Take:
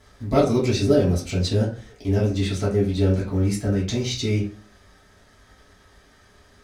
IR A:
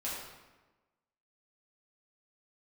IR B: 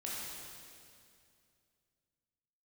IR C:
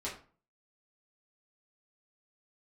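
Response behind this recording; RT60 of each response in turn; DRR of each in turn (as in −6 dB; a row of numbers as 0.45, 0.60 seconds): C; 1.2, 2.4, 0.40 seconds; −8.5, −6.5, −7.5 decibels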